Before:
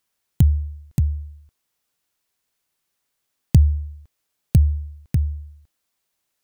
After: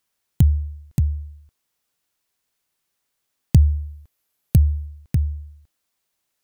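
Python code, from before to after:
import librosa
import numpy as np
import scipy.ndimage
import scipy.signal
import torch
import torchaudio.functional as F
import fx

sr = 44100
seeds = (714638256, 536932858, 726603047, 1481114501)

y = fx.peak_eq(x, sr, hz=12000.0, db=9.5, octaves=0.22, at=(3.58, 4.86))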